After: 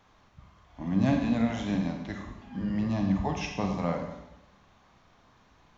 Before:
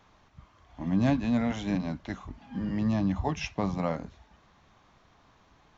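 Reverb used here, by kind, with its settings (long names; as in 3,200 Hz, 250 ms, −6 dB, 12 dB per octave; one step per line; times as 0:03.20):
four-comb reverb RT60 0.9 s, combs from 31 ms, DRR 2.5 dB
level −1.5 dB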